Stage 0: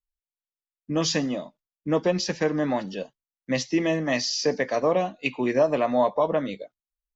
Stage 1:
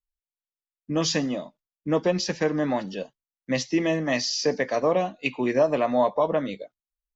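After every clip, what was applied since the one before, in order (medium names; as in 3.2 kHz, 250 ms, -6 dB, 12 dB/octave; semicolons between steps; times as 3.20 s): no audible change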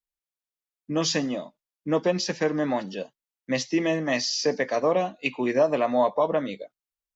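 bass shelf 75 Hz -12 dB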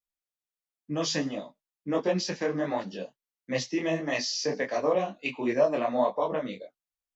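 detune thickener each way 50 cents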